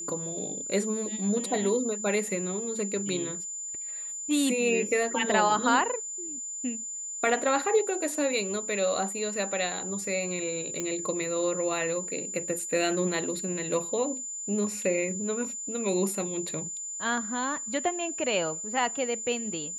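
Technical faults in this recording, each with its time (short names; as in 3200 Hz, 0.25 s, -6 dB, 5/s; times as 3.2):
tone 7100 Hz -34 dBFS
10.8 pop -17 dBFS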